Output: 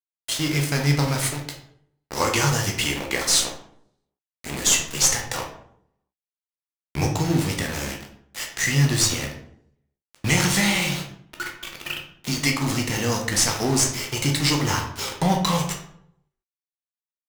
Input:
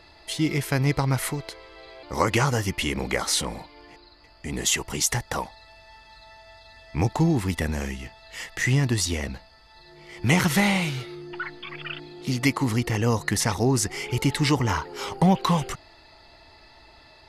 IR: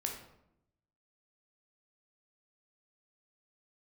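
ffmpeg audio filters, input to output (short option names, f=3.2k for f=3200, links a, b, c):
-filter_complex "[0:a]equalizer=f=7.8k:t=o:w=2.4:g=13,asplit=2[a][b];[b]alimiter=limit=-15.5dB:level=0:latency=1:release=451,volume=-2.5dB[c];[a][c]amix=inputs=2:normalize=0,aeval=exprs='0.596*(cos(1*acos(clip(val(0)/0.596,-1,1)))-cos(1*PI/2))+0.119*(cos(2*acos(clip(val(0)/0.596,-1,1)))-cos(2*PI/2))+0.0133*(cos(8*acos(clip(val(0)/0.596,-1,1)))-cos(8*PI/2))':c=same,adynamicsmooth=sensitivity=8:basefreq=1.9k,aeval=exprs='val(0)*gte(abs(val(0)),0.0794)':c=same[d];[1:a]atrim=start_sample=2205,asetrate=57330,aresample=44100[e];[d][e]afir=irnorm=-1:irlink=0,volume=-2.5dB"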